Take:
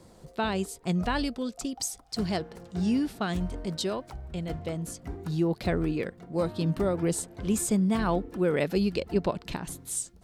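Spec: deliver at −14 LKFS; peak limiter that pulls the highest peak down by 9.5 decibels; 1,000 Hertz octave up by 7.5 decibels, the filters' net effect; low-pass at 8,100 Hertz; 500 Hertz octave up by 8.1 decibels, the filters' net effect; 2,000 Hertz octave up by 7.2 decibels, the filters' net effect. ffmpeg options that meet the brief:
ffmpeg -i in.wav -af "lowpass=8100,equalizer=frequency=500:width_type=o:gain=8.5,equalizer=frequency=1000:width_type=o:gain=5,equalizer=frequency=2000:width_type=o:gain=7,volume=14dB,alimiter=limit=-3dB:level=0:latency=1" out.wav

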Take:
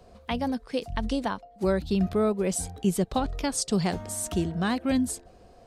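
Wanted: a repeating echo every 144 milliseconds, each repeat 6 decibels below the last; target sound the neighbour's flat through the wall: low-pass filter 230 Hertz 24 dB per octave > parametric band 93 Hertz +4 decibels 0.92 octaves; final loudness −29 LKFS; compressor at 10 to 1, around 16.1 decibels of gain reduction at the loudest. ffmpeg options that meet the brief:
ffmpeg -i in.wav -af "acompressor=threshold=-37dB:ratio=10,lowpass=frequency=230:width=0.5412,lowpass=frequency=230:width=1.3066,equalizer=frequency=93:width_type=o:width=0.92:gain=4,aecho=1:1:144|288|432|576|720|864:0.501|0.251|0.125|0.0626|0.0313|0.0157,volume=15.5dB" out.wav

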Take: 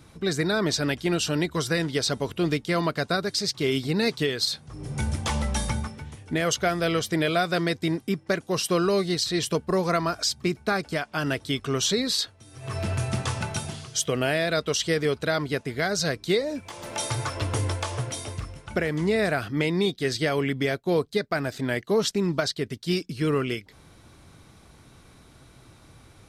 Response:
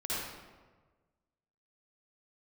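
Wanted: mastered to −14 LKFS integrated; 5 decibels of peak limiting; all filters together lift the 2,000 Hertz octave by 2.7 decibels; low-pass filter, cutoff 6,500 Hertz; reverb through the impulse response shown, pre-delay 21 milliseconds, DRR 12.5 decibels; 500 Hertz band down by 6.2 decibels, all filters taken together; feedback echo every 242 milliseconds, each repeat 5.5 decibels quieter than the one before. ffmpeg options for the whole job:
-filter_complex "[0:a]lowpass=6500,equalizer=frequency=500:width_type=o:gain=-8.5,equalizer=frequency=2000:width_type=o:gain=4,alimiter=limit=-17dB:level=0:latency=1,aecho=1:1:242|484|726|968|1210|1452|1694:0.531|0.281|0.149|0.079|0.0419|0.0222|0.0118,asplit=2[link_01][link_02];[1:a]atrim=start_sample=2205,adelay=21[link_03];[link_02][link_03]afir=irnorm=-1:irlink=0,volume=-18dB[link_04];[link_01][link_04]amix=inputs=2:normalize=0,volume=13dB"

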